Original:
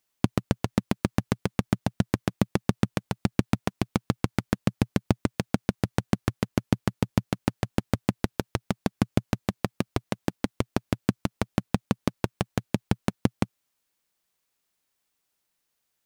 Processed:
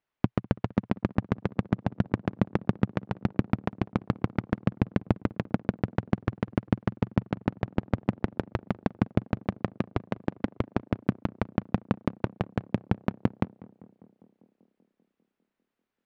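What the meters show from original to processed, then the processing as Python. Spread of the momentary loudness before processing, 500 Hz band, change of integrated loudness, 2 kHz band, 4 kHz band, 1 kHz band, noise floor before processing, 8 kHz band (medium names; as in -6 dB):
5 LU, -1.5 dB, -1.5 dB, -3.5 dB, -10.5 dB, -1.5 dB, -79 dBFS, under -20 dB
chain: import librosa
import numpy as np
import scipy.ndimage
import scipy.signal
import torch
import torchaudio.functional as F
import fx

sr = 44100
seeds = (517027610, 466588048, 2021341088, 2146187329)

p1 = scipy.signal.sosfilt(scipy.signal.butter(2, 2200.0, 'lowpass', fs=sr, output='sos'), x)
p2 = p1 + fx.echo_tape(p1, sr, ms=197, feedback_pct=80, wet_db=-18.5, lp_hz=1200.0, drive_db=7.0, wow_cents=39, dry=0)
y = F.gain(torch.from_numpy(p2), -1.5).numpy()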